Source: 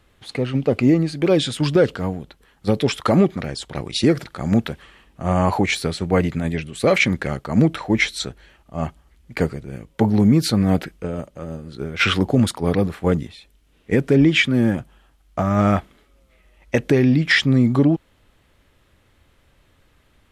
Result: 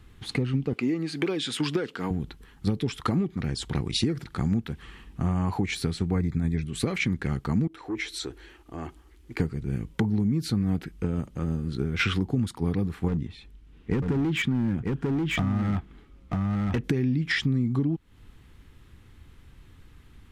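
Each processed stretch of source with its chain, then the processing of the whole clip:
0.73–2.11 HPF 300 Hz + bell 2200 Hz +4 dB 2.2 oct
6.15–6.66 Butterworth band-stop 2900 Hz, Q 3.5 + low shelf 140 Hz +6 dB
7.67–9.4 resonant low shelf 250 Hz -8.5 dB, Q 3 + compressor 2.5:1, threshold -34 dBFS + core saturation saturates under 530 Hz
13.08–16.84 LPF 2800 Hz 6 dB/oct + hard clip -16 dBFS + echo 0.94 s -6.5 dB
whole clip: low shelf 350 Hz +9 dB; compressor 6:1, threshold -23 dBFS; bell 590 Hz -13.5 dB 0.43 oct

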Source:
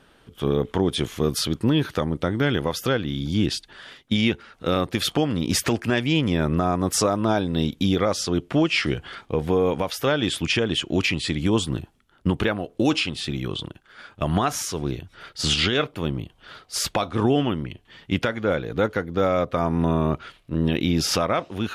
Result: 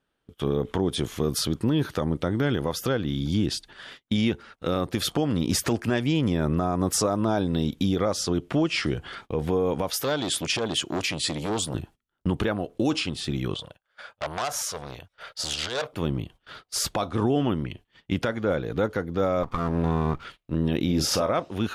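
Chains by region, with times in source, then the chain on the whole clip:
9.93–11.75 HPF 130 Hz 6 dB/oct + high shelf 3000 Hz +7 dB + core saturation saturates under 1800 Hz
13.54–15.93 resonant low shelf 430 Hz -7.5 dB, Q 3 + core saturation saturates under 3300 Hz
19.43–20.25 minimum comb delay 0.86 ms + high shelf 4600 Hz -6.5 dB
20.85–21.32 bell 550 Hz +5 dB 0.32 oct + doubler 39 ms -10 dB
whole clip: gate -44 dBFS, range -22 dB; dynamic EQ 2500 Hz, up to -6 dB, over -38 dBFS, Q 1; limiter -14.5 dBFS

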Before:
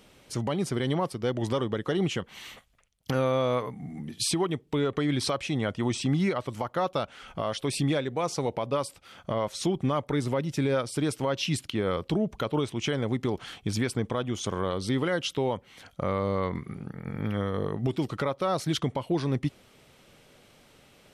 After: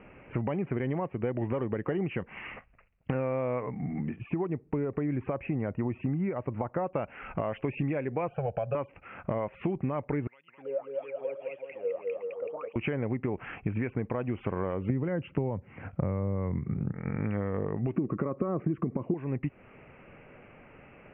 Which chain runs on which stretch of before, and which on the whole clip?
4.16–6.94 block floating point 7-bit + tape spacing loss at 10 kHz 38 dB
8.28–8.75 fixed phaser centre 1400 Hz, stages 8 + comb 1.3 ms, depth 53%
10.27–12.76 wah 1.7 Hz 460–3500 Hz, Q 17 + bouncing-ball echo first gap 0.21 s, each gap 0.8×, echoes 5
14.89–16.94 HPF 77 Hz 24 dB/oct + RIAA curve playback
17.96–19.14 compressor, threshold -30 dBFS + air absorption 470 m + small resonant body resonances 210/330/1100 Hz, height 17 dB, ringing for 20 ms
whole clip: steep low-pass 2700 Hz 96 dB/oct; dynamic EQ 1300 Hz, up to -6 dB, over -47 dBFS, Q 2.9; compressor, threshold -33 dBFS; gain +5.5 dB

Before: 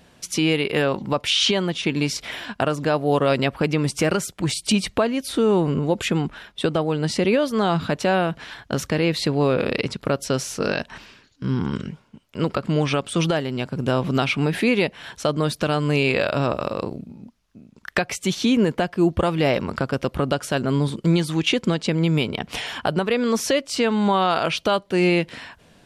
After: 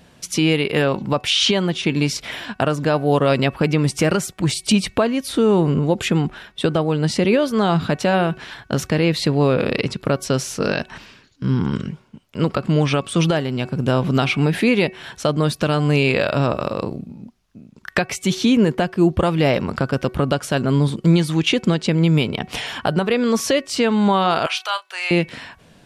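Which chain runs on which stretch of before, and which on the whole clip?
24.46–25.11 HPF 910 Hz 24 dB/oct + doubler 32 ms -12 dB
whole clip: bell 140 Hz +3 dB 1.4 oct; de-hum 373.8 Hz, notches 7; gain +2 dB

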